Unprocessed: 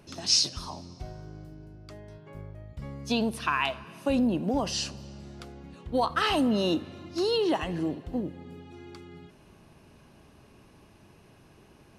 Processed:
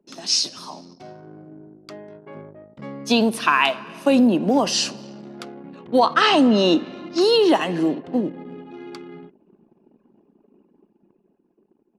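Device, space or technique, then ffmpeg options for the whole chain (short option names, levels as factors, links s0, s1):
voice memo with heavy noise removal: -filter_complex "[0:a]asettb=1/sr,asplit=3[s0][s1][s2];[s0]atrim=end=5.994[s3];[s1]atrim=start=5.99:end=7.21,asetpts=PTS-STARTPTS,afade=t=in:d=0.004:c=qsin,afade=t=out:st=1.216:d=0.004:c=qsin,lowpass=f=7300:w=0.5412,lowpass=f=7300:w=1.3066[s4];[s2]atrim=start=7.206[s5];[s3][s4]acrossfade=d=0.004:c1=hsin:c2=qsin[s6];[s6][s5]acrossfade=d=0.004:c1=qsin:c2=hsin,highpass=f=190:w=0.5412,highpass=f=190:w=1.3066,anlmdn=0.00398,dynaudnorm=f=190:g=13:m=2.37,volume=1.33"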